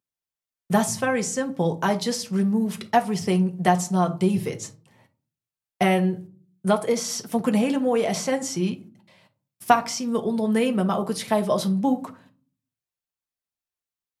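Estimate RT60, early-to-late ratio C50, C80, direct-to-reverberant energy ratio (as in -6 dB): 0.40 s, 17.0 dB, 23.5 dB, 4.5 dB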